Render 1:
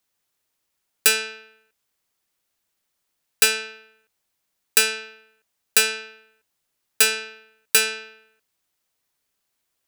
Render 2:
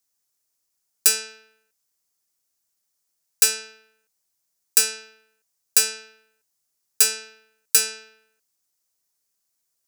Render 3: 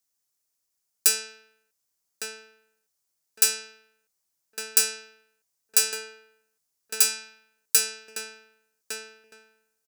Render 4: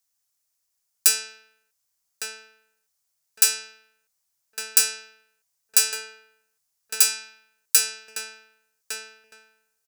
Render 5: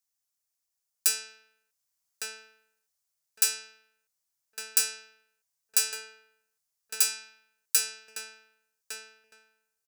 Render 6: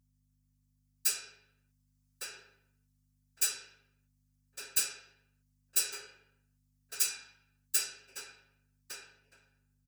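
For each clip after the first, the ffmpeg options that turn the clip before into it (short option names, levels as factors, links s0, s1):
-af "highshelf=f=4300:t=q:w=1.5:g=8,volume=0.447"
-filter_complex "[0:a]asplit=2[s0][s1];[s1]adelay=1158,lowpass=f=1700:p=1,volume=0.708,asplit=2[s2][s3];[s3]adelay=1158,lowpass=f=1700:p=1,volume=0.26,asplit=2[s4][s5];[s5]adelay=1158,lowpass=f=1700:p=1,volume=0.26,asplit=2[s6][s7];[s7]adelay=1158,lowpass=f=1700:p=1,volume=0.26[s8];[s0][s2][s4][s6][s8]amix=inputs=5:normalize=0,volume=0.708"
-af "equalizer=f=300:t=o:w=1:g=-13.5,volume=1.33"
-af "dynaudnorm=f=130:g=17:m=3.98,volume=0.422"
-af "afftfilt=real='hypot(re,im)*cos(2*PI*random(0))':imag='hypot(re,im)*sin(2*PI*random(1))':win_size=512:overlap=0.75,aeval=exprs='val(0)+0.000282*(sin(2*PI*50*n/s)+sin(2*PI*2*50*n/s)/2+sin(2*PI*3*50*n/s)/3+sin(2*PI*4*50*n/s)/4+sin(2*PI*5*50*n/s)/5)':c=same,aecho=1:1:7.4:0.71,volume=0.891"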